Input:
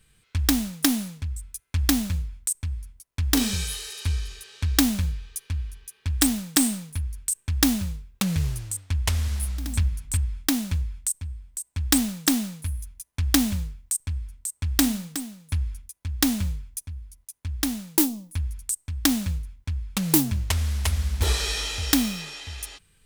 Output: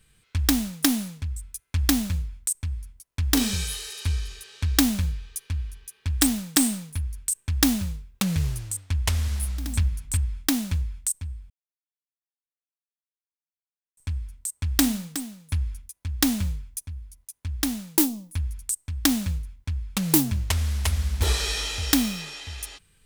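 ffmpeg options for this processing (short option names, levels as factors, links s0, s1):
-filter_complex "[0:a]asplit=3[s0][s1][s2];[s0]atrim=end=11.5,asetpts=PTS-STARTPTS,afade=t=out:st=11.496:d=0.004:c=hsin[s3];[s1]atrim=start=11.5:end=13.97,asetpts=PTS-STARTPTS,volume=0[s4];[s2]atrim=start=13.97,asetpts=PTS-STARTPTS,afade=t=in:d=0.004:c=hsin[s5];[s3][s4][s5]concat=n=3:v=0:a=1"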